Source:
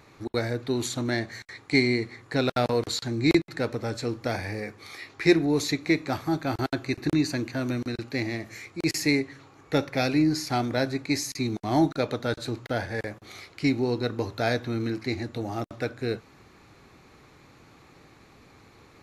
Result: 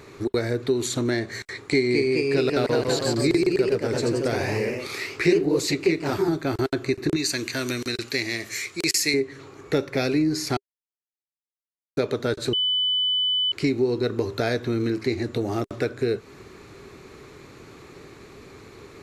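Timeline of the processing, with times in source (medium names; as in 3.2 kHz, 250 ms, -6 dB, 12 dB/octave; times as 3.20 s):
1.63–6.41 s: ever faster or slower copies 216 ms, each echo +1 st, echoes 3
7.16–9.14 s: tilt shelf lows -8.5 dB, about 1.4 kHz
10.57–11.97 s: mute
12.53–13.52 s: bleep 3 kHz -23 dBFS
whole clip: graphic EQ with 31 bands 400 Hz +10 dB, 800 Hz -5 dB, 8 kHz +4 dB; compression 2.5:1, threshold -30 dBFS; trim +7 dB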